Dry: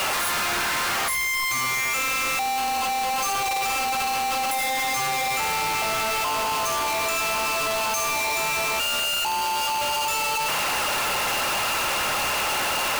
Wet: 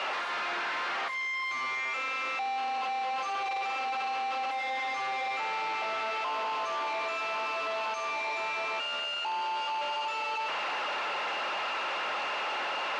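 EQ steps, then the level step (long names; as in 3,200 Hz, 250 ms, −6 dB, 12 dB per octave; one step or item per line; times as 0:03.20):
band-pass filter 370–3,600 Hz
high-frequency loss of the air 80 metres
−6.0 dB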